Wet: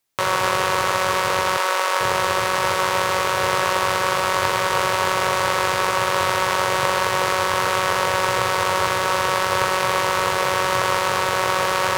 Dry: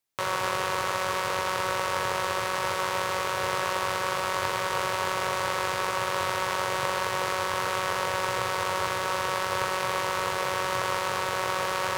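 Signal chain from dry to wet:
0:01.57–0:02.01: high-pass filter 480 Hz 12 dB per octave
level +8 dB

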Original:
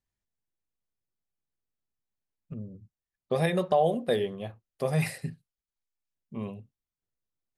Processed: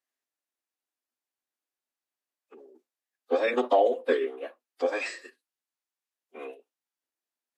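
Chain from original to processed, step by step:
Chebyshev high-pass with heavy ripple 360 Hz, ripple 3 dB
phase-vocoder pitch shift with formants kept −7 semitones
level +4.5 dB

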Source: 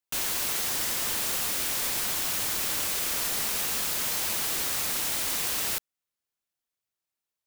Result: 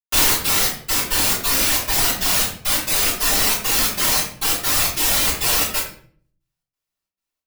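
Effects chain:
reverb reduction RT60 1.9 s
gate pattern ".xx.xx..x.xx.xxx" 136 BPM −60 dB
convolution reverb RT60 0.50 s, pre-delay 3 ms, DRR −13 dB
level +3 dB

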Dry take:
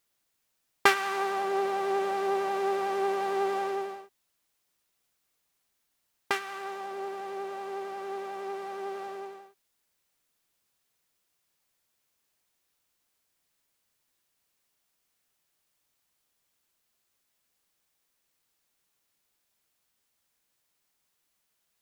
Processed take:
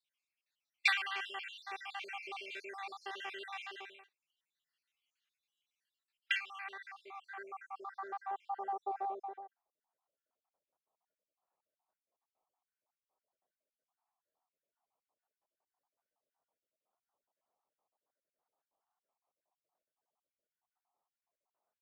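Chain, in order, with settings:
time-frequency cells dropped at random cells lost 61%
band-pass filter sweep 2,700 Hz → 730 Hz, 0:06.27–0:08.89
noise reduction from a noise print of the clip's start 7 dB
level +5 dB

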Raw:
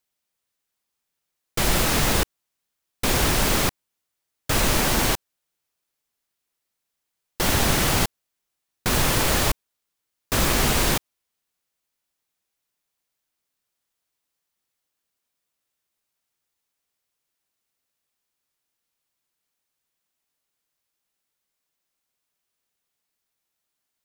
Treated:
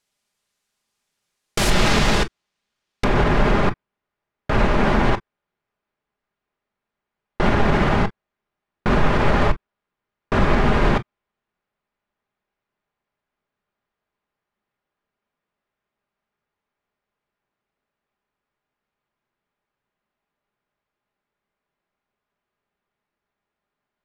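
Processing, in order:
low-pass filter 9,100 Hz 12 dB per octave, from 0:01.70 4,700 Hz, from 0:03.04 1,700 Hz
brickwall limiter −15.5 dBFS, peak gain reduction 6 dB
convolution reverb, pre-delay 5 ms, DRR 7.5 dB
level +6.5 dB

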